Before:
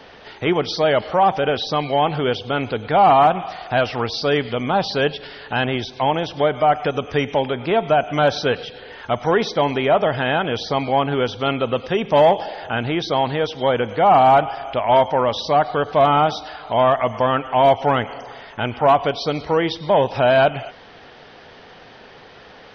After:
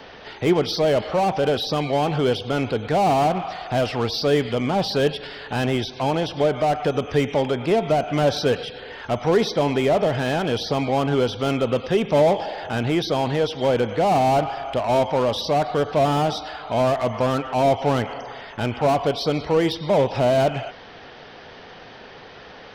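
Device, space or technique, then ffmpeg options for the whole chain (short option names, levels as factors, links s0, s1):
one-band saturation: -filter_complex "[0:a]acrossover=split=590|4700[s0][s1][s2];[s1]asoftclip=type=tanh:threshold=0.0376[s3];[s0][s3][s2]amix=inputs=3:normalize=0,volume=1.19"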